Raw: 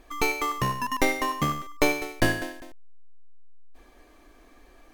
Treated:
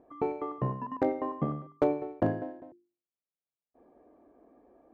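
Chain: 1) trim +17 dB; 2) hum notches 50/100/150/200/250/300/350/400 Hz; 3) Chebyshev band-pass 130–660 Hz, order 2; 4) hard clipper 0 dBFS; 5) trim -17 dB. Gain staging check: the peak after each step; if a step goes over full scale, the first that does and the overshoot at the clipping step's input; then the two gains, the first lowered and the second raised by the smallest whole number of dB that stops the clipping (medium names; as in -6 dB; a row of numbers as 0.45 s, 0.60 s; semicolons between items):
+8.0 dBFS, +8.5 dBFS, +5.5 dBFS, 0.0 dBFS, -17.0 dBFS; step 1, 5.5 dB; step 1 +11 dB, step 5 -11 dB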